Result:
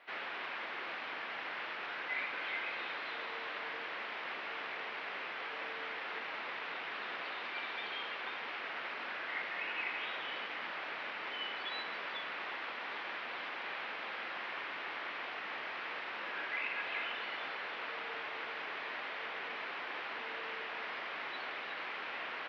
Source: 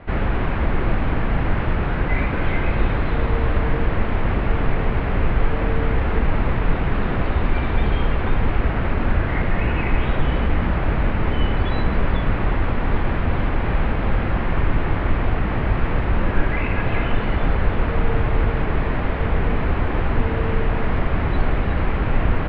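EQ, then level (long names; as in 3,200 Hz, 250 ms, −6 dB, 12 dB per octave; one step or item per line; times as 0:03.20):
high-pass filter 330 Hz 12 dB per octave
first difference
+2.5 dB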